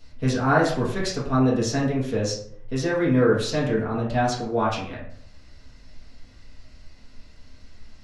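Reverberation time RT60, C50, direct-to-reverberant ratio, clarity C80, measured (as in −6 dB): 0.65 s, 4.5 dB, −7.5 dB, 8.5 dB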